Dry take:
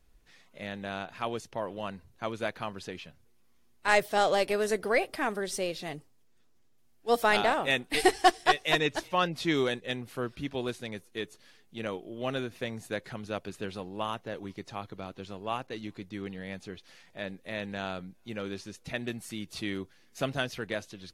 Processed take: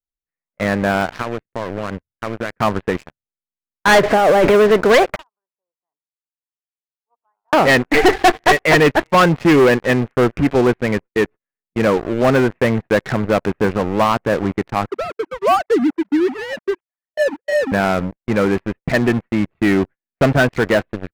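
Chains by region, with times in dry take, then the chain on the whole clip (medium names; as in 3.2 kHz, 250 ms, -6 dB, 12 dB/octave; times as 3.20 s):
1.21–2.60 s: peaking EQ 810 Hz -10.5 dB 0.64 oct + compression, threshold -40 dBFS
4.03–4.54 s: compressor with a negative ratio -34 dBFS + waveshaping leveller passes 1
5.16–7.53 s: two resonant band-passes 2.6 kHz, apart 2.8 oct + compression 5:1, threshold -48 dBFS
14.89–17.72 s: formants replaced by sine waves + low-pass 1.6 kHz + companded quantiser 6-bit
whole clip: steep low-pass 2.2 kHz 36 dB/octave; gate -47 dBFS, range -28 dB; waveshaping leveller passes 5; trim +3.5 dB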